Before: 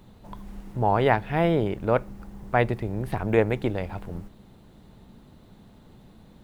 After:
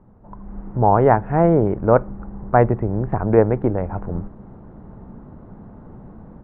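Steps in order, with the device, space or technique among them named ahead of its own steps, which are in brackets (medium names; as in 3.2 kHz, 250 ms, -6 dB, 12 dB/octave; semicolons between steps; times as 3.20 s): action camera in a waterproof case (low-pass 1.4 kHz 24 dB/octave; level rider gain up to 11 dB; AAC 128 kbps 48 kHz)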